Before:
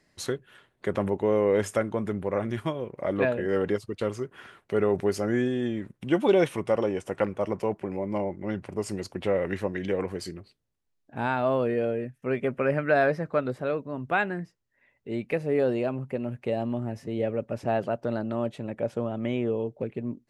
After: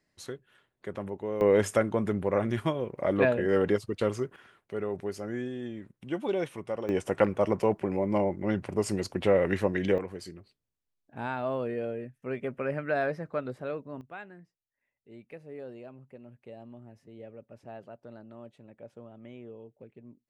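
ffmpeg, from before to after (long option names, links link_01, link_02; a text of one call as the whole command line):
ffmpeg -i in.wav -af "asetnsamples=nb_out_samples=441:pad=0,asendcmd='1.41 volume volume 1dB;4.36 volume volume -9dB;6.89 volume volume 2.5dB;9.98 volume volume -6.5dB;14.01 volume volume -18dB',volume=-9.5dB" out.wav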